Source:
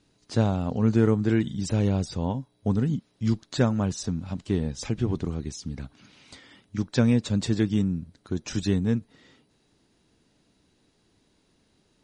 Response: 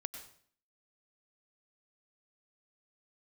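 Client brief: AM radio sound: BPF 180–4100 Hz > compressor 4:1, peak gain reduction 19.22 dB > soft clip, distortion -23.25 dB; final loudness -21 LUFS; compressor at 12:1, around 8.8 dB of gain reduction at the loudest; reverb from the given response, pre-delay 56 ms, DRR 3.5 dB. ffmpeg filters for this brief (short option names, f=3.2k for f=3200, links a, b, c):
-filter_complex "[0:a]acompressor=threshold=-25dB:ratio=12,asplit=2[a][b];[1:a]atrim=start_sample=2205,adelay=56[c];[b][c]afir=irnorm=-1:irlink=0,volume=-2dB[d];[a][d]amix=inputs=2:normalize=0,highpass=180,lowpass=4.1k,acompressor=threshold=-48dB:ratio=4,asoftclip=threshold=-35.5dB,volume=29dB"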